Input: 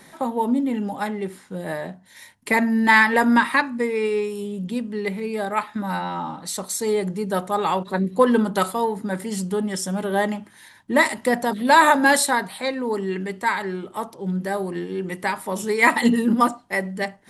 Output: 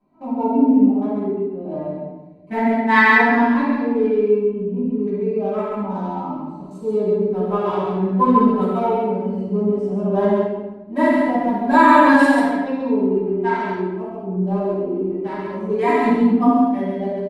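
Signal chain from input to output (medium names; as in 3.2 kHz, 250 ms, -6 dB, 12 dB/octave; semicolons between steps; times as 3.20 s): local Wiener filter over 25 samples; 2.66–3.29 s: Bessel high-pass 160 Hz; gate -37 dBFS, range -11 dB; 4.04–5.19 s: graphic EQ with 31 bands 800 Hz -4 dB, 2 kHz -3 dB, 4 kHz -10 dB, 8 kHz -10 dB; harmonic-percussive split percussive -15 dB; treble shelf 5.6 kHz -10.5 dB; comb 3 ms, depth 55%; on a send: multi-tap echo 135/142 ms -6/-7.5 dB; on the sum: simulated room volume 530 m³, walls mixed, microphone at 8 m; loudness maximiser -10 dB; trim -1 dB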